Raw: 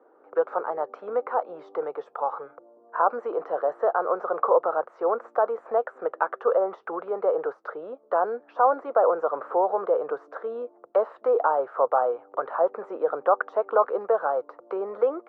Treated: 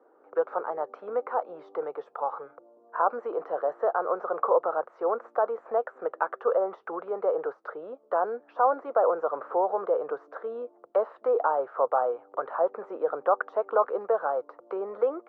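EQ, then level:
high-frequency loss of the air 50 metres
−2.5 dB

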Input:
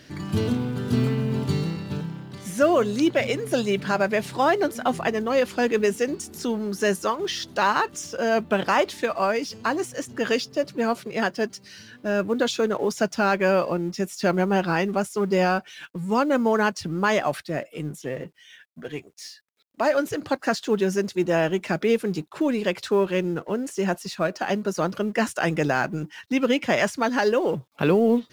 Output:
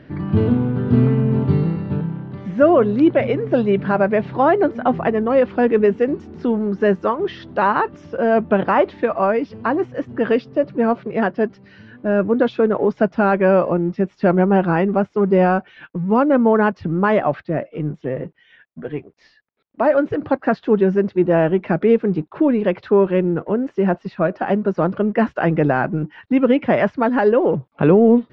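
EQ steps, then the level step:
high-frequency loss of the air 190 metres
head-to-tape spacing loss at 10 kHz 27 dB
high-shelf EQ 3,700 Hz −7.5 dB
+8.5 dB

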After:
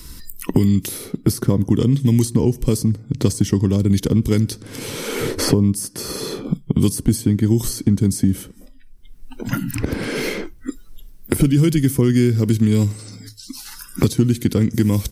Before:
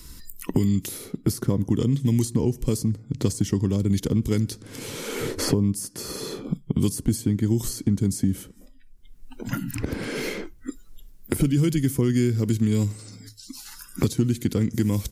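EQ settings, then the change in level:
notch filter 7,000 Hz, Q 11
+6.0 dB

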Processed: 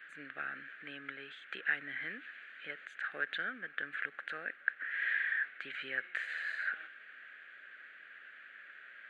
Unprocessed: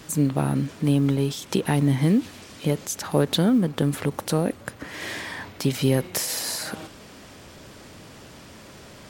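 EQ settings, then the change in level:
high-pass with resonance 1,600 Hz, resonance Q 6
head-to-tape spacing loss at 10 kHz 44 dB
phaser with its sweep stopped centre 2,300 Hz, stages 4
0.0 dB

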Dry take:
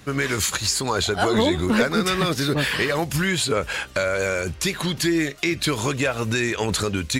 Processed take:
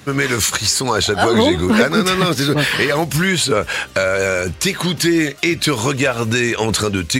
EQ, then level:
high-pass filter 75 Hz
+6.0 dB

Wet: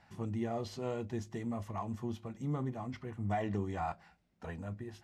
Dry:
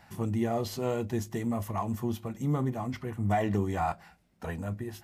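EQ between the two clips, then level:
low-pass filter 6,600 Hz 12 dB per octave
−7.0 dB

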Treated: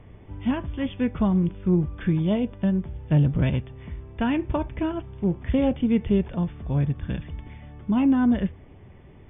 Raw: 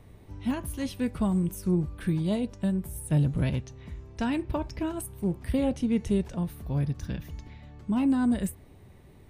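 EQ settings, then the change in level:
linear-phase brick-wall low-pass 3,600 Hz
+4.5 dB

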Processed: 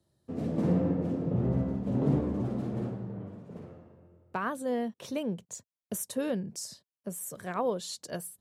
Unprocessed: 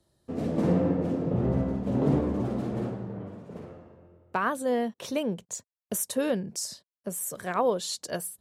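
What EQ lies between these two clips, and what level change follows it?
high-pass filter 99 Hz
low-shelf EQ 170 Hz +10.5 dB
−6.0 dB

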